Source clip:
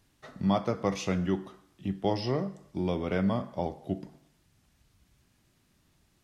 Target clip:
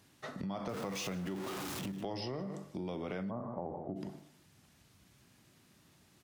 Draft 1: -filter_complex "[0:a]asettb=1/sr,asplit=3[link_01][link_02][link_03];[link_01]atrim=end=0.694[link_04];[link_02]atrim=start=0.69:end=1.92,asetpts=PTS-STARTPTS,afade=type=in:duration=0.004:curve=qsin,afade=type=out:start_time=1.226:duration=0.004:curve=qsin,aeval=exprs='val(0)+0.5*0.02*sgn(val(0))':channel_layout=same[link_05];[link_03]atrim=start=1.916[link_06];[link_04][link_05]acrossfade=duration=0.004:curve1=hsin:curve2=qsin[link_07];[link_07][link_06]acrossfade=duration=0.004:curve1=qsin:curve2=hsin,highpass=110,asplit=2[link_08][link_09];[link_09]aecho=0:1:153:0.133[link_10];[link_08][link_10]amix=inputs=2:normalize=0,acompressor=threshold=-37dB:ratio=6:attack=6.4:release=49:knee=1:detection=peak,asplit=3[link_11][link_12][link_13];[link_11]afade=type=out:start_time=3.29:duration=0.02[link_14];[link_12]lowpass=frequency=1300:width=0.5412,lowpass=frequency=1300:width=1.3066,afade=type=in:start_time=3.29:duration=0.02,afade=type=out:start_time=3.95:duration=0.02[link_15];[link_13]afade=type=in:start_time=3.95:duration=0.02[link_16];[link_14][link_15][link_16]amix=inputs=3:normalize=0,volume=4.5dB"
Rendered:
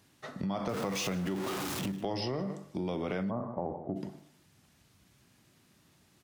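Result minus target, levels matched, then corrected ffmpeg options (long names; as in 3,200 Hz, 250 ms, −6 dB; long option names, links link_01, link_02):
downward compressor: peak gain reduction −5.5 dB
-filter_complex "[0:a]asettb=1/sr,asplit=3[link_01][link_02][link_03];[link_01]atrim=end=0.694[link_04];[link_02]atrim=start=0.69:end=1.92,asetpts=PTS-STARTPTS,afade=type=in:duration=0.004:curve=qsin,afade=type=out:start_time=1.226:duration=0.004:curve=qsin,aeval=exprs='val(0)+0.5*0.02*sgn(val(0))':channel_layout=same[link_05];[link_03]atrim=start=1.916[link_06];[link_04][link_05]acrossfade=duration=0.004:curve1=hsin:curve2=qsin[link_07];[link_07][link_06]acrossfade=duration=0.004:curve1=qsin:curve2=hsin,highpass=110,asplit=2[link_08][link_09];[link_09]aecho=0:1:153:0.133[link_10];[link_08][link_10]amix=inputs=2:normalize=0,acompressor=threshold=-43.5dB:ratio=6:attack=6.4:release=49:knee=1:detection=peak,asplit=3[link_11][link_12][link_13];[link_11]afade=type=out:start_time=3.29:duration=0.02[link_14];[link_12]lowpass=frequency=1300:width=0.5412,lowpass=frequency=1300:width=1.3066,afade=type=in:start_time=3.29:duration=0.02,afade=type=out:start_time=3.95:duration=0.02[link_15];[link_13]afade=type=in:start_time=3.95:duration=0.02[link_16];[link_14][link_15][link_16]amix=inputs=3:normalize=0,volume=4.5dB"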